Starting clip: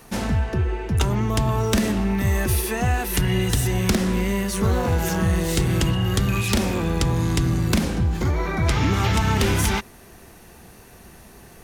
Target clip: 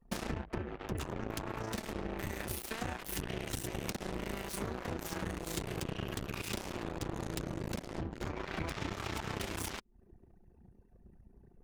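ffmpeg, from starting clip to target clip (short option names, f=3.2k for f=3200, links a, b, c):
-af "acompressor=threshold=-30dB:ratio=16,aeval=exprs='0.0841*(cos(1*acos(clip(val(0)/0.0841,-1,1)))-cos(1*PI/2))+0.000944*(cos(5*acos(clip(val(0)/0.0841,-1,1)))-cos(5*PI/2))+0.0237*(cos(7*acos(clip(val(0)/0.0841,-1,1)))-cos(7*PI/2))':c=same,anlmdn=0.158,adynamicequalizer=threshold=0.00141:dfrequency=340:dqfactor=4.8:tfrequency=340:tqfactor=4.8:attack=5:release=100:ratio=0.375:range=2:mode=boostabove:tftype=bell,tremolo=f=29:d=0.519,volume=-3dB"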